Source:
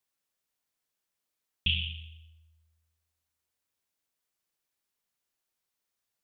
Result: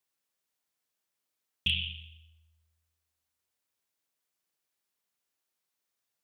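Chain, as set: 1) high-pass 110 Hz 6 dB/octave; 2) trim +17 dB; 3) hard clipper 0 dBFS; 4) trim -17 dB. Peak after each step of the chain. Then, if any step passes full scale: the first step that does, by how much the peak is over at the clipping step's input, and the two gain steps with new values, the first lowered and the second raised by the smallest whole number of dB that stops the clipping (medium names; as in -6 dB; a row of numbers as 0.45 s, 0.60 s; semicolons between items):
-12.5 dBFS, +4.5 dBFS, 0.0 dBFS, -17.0 dBFS; step 2, 4.5 dB; step 2 +12 dB, step 4 -12 dB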